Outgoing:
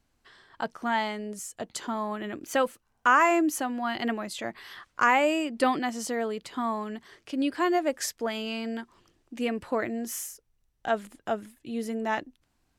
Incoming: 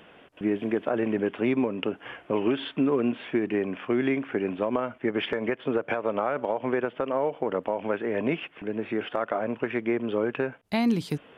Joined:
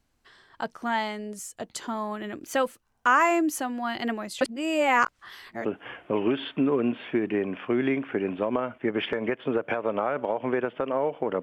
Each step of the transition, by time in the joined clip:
outgoing
4.41–5.65 reverse
5.65 switch to incoming from 1.85 s

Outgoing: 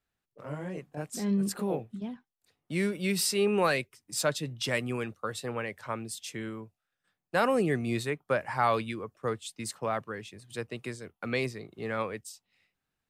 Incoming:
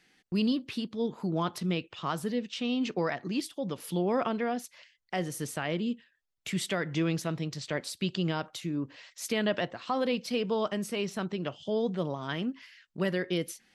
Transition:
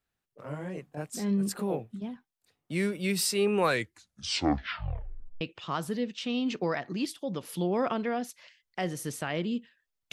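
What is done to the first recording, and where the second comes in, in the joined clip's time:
outgoing
3.61 tape stop 1.80 s
5.41 switch to incoming from 1.76 s

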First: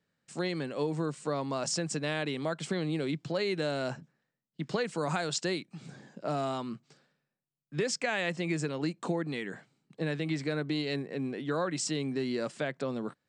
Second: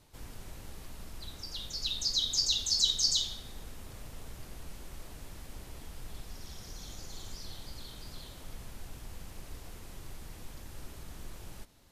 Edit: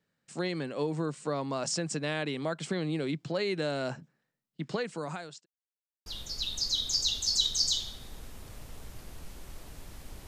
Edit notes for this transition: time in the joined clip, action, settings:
first
4.37–5.46 fade out equal-power
5.46–6.06 mute
6.06 switch to second from 1.5 s

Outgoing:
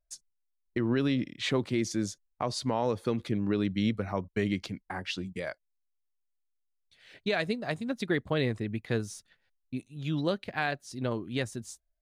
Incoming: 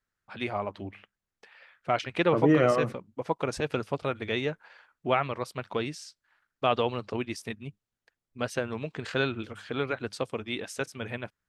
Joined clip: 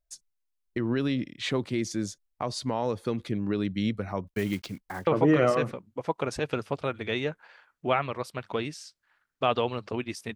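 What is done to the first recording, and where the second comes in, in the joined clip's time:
outgoing
4.27–5.07 block floating point 5-bit
5.07 switch to incoming from 2.28 s

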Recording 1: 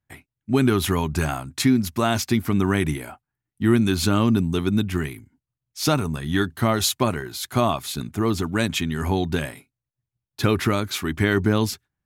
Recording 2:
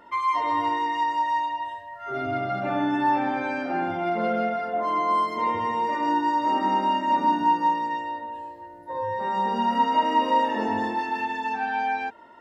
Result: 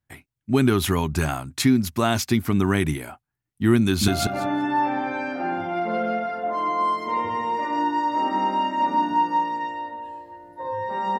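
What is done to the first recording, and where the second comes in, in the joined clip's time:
recording 1
3.82–4.08 echo throw 0.19 s, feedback 15%, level -2 dB
4.08 switch to recording 2 from 2.38 s

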